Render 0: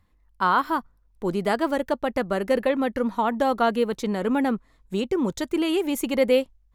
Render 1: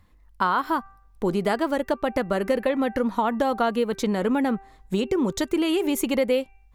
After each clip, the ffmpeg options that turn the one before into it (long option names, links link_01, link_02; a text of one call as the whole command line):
ffmpeg -i in.wav -af "bandreject=frequency=391.1:width_type=h:width=4,bandreject=frequency=782.2:width_type=h:width=4,bandreject=frequency=1173.3:width_type=h:width=4,bandreject=frequency=1564.4:width_type=h:width=4,bandreject=frequency=1955.5:width_type=h:width=4,bandreject=frequency=2346.6:width_type=h:width=4,bandreject=frequency=2737.7:width_type=h:width=4,acompressor=threshold=-28dB:ratio=3,volume=6.5dB" out.wav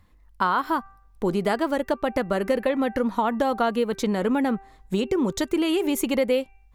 ffmpeg -i in.wav -af anull out.wav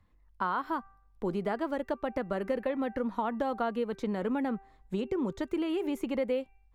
ffmpeg -i in.wav -filter_complex "[0:a]highshelf=frequency=4700:gain=-10.5,acrossover=split=140|2400[link_01][link_02][link_03];[link_03]alimiter=level_in=11dB:limit=-24dB:level=0:latency=1:release=52,volume=-11dB[link_04];[link_01][link_02][link_04]amix=inputs=3:normalize=0,volume=-8dB" out.wav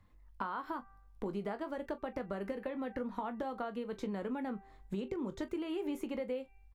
ffmpeg -i in.wav -filter_complex "[0:a]acompressor=threshold=-37dB:ratio=5,asplit=2[link_01][link_02];[link_02]aecho=0:1:20|41:0.299|0.15[link_03];[link_01][link_03]amix=inputs=2:normalize=0,volume=1dB" out.wav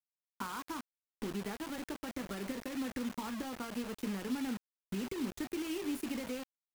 ffmpeg -i in.wav -af "equalizer=frequency=250:width_type=o:width=0.67:gain=6,equalizer=frequency=630:width_type=o:width=0.67:gain=-10,equalizer=frequency=2500:width_type=o:width=0.67:gain=5,equalizer=frequency=10000:width_type=o:width=0.67:gain=12,acrusher=bits=6:mix=0:aa=0.000001,volume=-2dB" out.wav